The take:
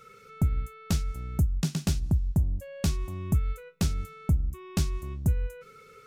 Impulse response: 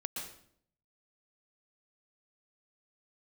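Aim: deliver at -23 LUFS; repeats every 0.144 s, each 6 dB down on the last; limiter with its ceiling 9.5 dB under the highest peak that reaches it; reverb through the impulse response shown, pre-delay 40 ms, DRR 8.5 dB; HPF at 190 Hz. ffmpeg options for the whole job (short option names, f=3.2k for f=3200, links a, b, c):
-filter_complex "[0:a]highpass=190,alimiter=level_in=2dB:limit=-24dB:level=0:latency=1,volume=-2dB,aecho=1:1:144|288|432|576|720|864:0.501|0.251|0.125|0.0626|0.0313|0.0157,asplit=2[a][b];[1:a]atrim=start_sample=2205,adelay=40[c];[b][c]afir=irnorm=-1:irlink=0,volume=-9dB[d];[a][d]amix=inputs=2:normalize=0,volume=17dB"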